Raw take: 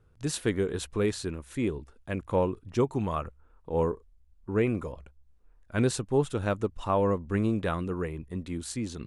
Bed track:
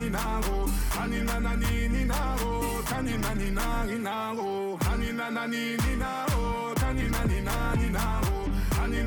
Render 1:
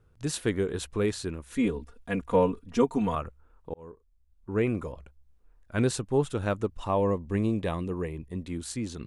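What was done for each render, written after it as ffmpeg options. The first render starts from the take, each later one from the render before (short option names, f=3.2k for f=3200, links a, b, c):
-filter_complex "[0:a]asettb=1/sr,asplit=3[a][b][c];[a]atrim=end=1.524[d];[b]atrim=start=1.52:end=3.15,asetpts=PTS-STARTPTS,afade=t=in:d=0.004:c=qsin,afade=t=out:st=1.626:d=0.004:c=qsin,aecho=1:1:4.2:0.99,atrim=end_sample=71883[e];[c]atrim=start=3.146[f];[d][e]acrossfade=d=0.004:c1=hsin:c2=qsin[g];[g][f]acrossfade=d=0.004:c1=qsin:c2=hsin,asettb=1/sr,asplit=3[h][i][j];[h]atrim=end=6.874[k];[i]atrim=start=6.87:end=8.47,asetpts=PTS-STARTPTS,afade=t=in:d=0.004:c=qsin,afade=t=out:st=1.596:d=0.004:c=qsin,equalizer=f=1.4k:t=o:w=0.23:g=-15[l];[j]atrim=start=8.466[m];[k][l]acrossfade=d=0.004:c1=hsin:c2=qsin[n];[n][m]acrossfade=d=0.004:c1=qsin:c2=hsin,asplit=2[o][p];[o]atrim=end=3.74,asetpts=PTS-STARTPTS,afade=t=out:st=3.736:d=0.004:c=hsin[q];[p]atrim=start=3.74,asetpts=PTS-STARTPTS,afade=t=in:d=0.93[r];[q][r]concat=n=2:v=0:a=1"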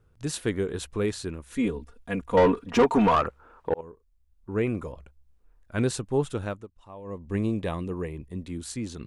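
-filter_complex "[0:a]asettb=1/sr,asplit=3[a][b][c];[a]atrim=end=2.374[d];[b]atrim=start=2.37:end=3.81,asetpts=PTS-STARTPTS,afade=t=in:d=0.004:c=qsin,afade=t=out:st=1.436:d=0.004:c=qsin,asplit=2[e][f];[f]highpass=f=720:p=1,volume=25dB,asoftclip=type=tanh:threshold=-10dB[g];[e][g]amix=inputs=2:normalize=0,lowpass=f=1.6k:p=1,volume=-6dB[h];[c]atrim=start=3.806[i];[d][h]acrossfade=d=0.004:c1=hsin:c2=qsin[j];[j][i]acrossfade=d=0.004:c1=qsin:c2=hsin,asettb=1/sr,asplit=3[k][l][m];[k]atrim=end=8.214[n];[l]atrim=start=8.21:end=8.76,asetpts=PTS-STARTPTS,afade=t=in:d=0.004:c=qsin,afade=t=out:st=0.546:d=0.004:c=qsin,acrossover=split=440|3000[o][p][q];[p]acompressor=threshold=-48dB:ratio=6:attack=3.2:release=140:knee=2.83:detection=peak[r];[o][r][q]amix=inputs=3:normalize=0[s];[m]atrim=start=8.756[t];[n][s]acrossfade=d=0.004:c1=hsin:c2=qsin[u];[u][t]acrossfade=d=0.004:c1=qsin:c2=hsin,asplit=3[v][w][x];[v]atrim=end=6.67,asetpts=PTS-STARTPTS,afade=t=out:st=6.36:d=0.31:silence=0.133352[y];[w]atrim=start=6.67:end=7.04,asetpts=PTS-STARTPTS,volume=-17.5dB[z];[x]atrim=start=7.04,asetpts=PTS-STARTPTS,afade=t=in:d=0.31:silence=0.133352[aa];[y][z][aa]concat=n=3:v=0:a=1"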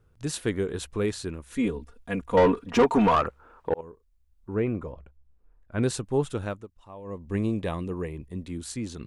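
-filter_complex "[0:a]asettb=1/sr,asplit=3[a][b][c];[a]atrim=end=4.554[d];[b]atrim=start=4.55:end=5.83,asetpts=PTS-STARTPTS,afade=t=in:d=0.004:c=qsin,afade=t=out:st=1.276:d=0.004:c=qsin,lowpass=f=1.6k:p=1[e];[c]atrim=start=5.826[f];[d][e]acrossfade=d=0.004:c1=hsin:c2=qsin[g];[g][f]acrossfade=d=0.004:c1=qsin:c2=hsin"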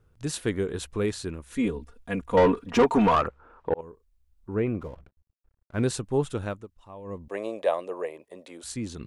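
-filter_complex "[0:a]asettb=1/sr,asplit=3[a][b][c];[a]atrim=end=3.274[d];[b]atrim=start=3.27:end=3.79,asetpts=PTS-STARTPTS,afade=t=in:d=0.004:c=qsin,afade=t=out:st=0.516:d=0.004:c=qsin,aemphasis=mode=reproduction:type=50fm[e];[c]atrim=start=3.786[f];[d][e]acrossfade=d=0.004:c1=hsin:c2=qsin[g];[g][f]acrossfade=d=0.004:c1=qsin:c2=hsin,asplit=3[h][i][j];[h]afade=t=out:st=4.79:d=0.02[k];[i]aeval=exprs='sgn(val(0))*max(abs(val(0))-0.00178,0)':c=same,afade=t=in:st=4.79:d=0.02,afade=t=out:st=5.82:d=0.02[l];[j]afade=t=in:st=5.82:d=0.02[m];[k][l][m]amix=inputs=3:normalize=0,asettb=1/sr,asplit=3[n][o][p];[n]atrim=end=7.284[q];[o]atrim=start=7.28:end=8.64,asetpts=PTS-STARTPTS,afade=t=in:d=0.004:c=qsin,afade=t=out:st=1.356:d=0.004:c=qsin,highpass=f=590:t=q:w=4.5[r];[p]atrim=start=8.636[s];[q][r]acrossfade=d=0.004:c1=hsin:c2=qsin[t];[t][s]acrossfade=d=0.004:c1=qsin:c2=hsin"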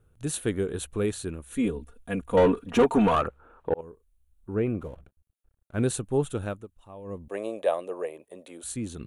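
-af "equalizer=f=1k:t=o:w=0.33:g=-5,equalizer=f=2k:t=o:w=0.33:g=-5,equalizer=f=5k:t=o:w=0.33:g=-11,equalizer=f=10k:t=o:w=0.33:g=8"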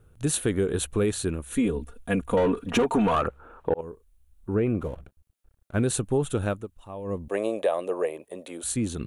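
-filter_complex "[0:a]asplit=2[a][b];[b]alimiter=limit=-20dB:level=0:latency=1:release=25,volume=0.5dB[c];[a][c]amix=inputs=2:normalize=0,acompressor=threshold=-20dB:ratio=4"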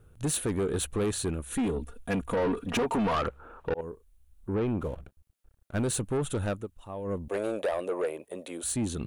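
-af "asoftclip=type=tanh:threshold=-23.5dB"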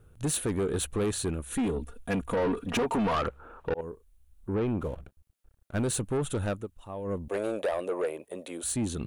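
-af anull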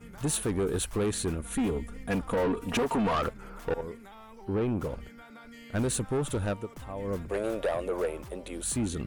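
-filter_complex "[1:a]volume=-18.5dB[a];[0:a][a]amix=inputs=2:normalize=0"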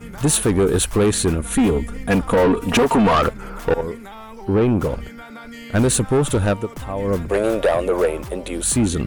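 -af "volume=12dB"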